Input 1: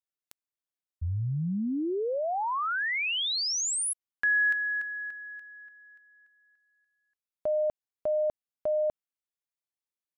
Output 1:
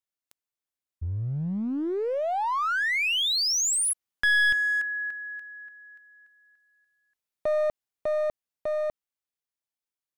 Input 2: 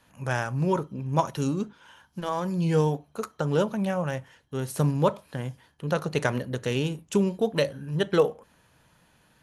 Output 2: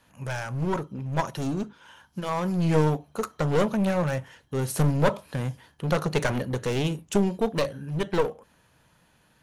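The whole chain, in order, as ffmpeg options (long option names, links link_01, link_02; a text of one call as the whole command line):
ffmpeg -i in.wav -af "aeval=exprs='clip(val(0),-1,0.0398)':channel_layout=same,dynaudnorm=framelen=150:gausssize=31:maxgain=5dB" out.wav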